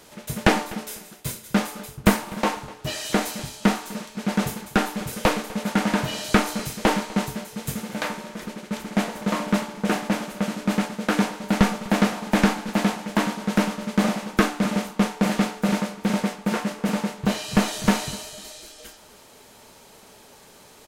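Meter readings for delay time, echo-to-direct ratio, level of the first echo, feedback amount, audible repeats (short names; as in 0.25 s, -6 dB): 0.249 s, -19.5 dB, -20.0 dB, 28%, 2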